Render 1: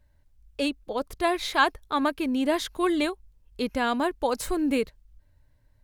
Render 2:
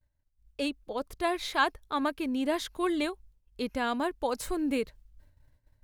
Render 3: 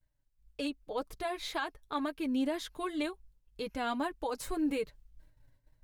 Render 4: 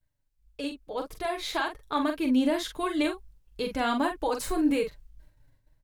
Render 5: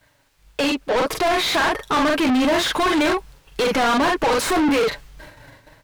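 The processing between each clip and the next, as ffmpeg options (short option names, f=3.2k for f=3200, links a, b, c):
-af "agate=range=-33dB:threshold=-50dB:ratio=3:detection=peak,areverse,acompressor=mode=upward:threshold=-42dB:ratio=2.5,areverse,volume=-4.5dB"
-af "alimiter=limit=-23dB:level=0:latency=1:release=374,flanger=delay=6.1:depth=1.3:regen=-18:speed=1.9:shape=sinusoidal,volume=2dB"
-filter_complex "[0:a]dynaudnorm=f=500:g=5:m=6.5dB,asplit=2[a][b];[b]adelay=43,volume=-6.5dB[c];[a][c]amix=inputs=2:normalize=0"
-filter_complex "[0:a]asplit=2[a][b];[b]highpass=f=720:p=1,volume=35dB,asoftclip=type=tanh:threshold=-14dB[c];[a][c]amix=inputs=2:normalize=0,lowpass=f=2.7k:p=1,volume=-6dB,asplit=2[d][e];[e]asoftclip=type=tanh:threshold=-24.5dB,volume=-4dB[f];[d][f]amix=inputs=2:normalize=0"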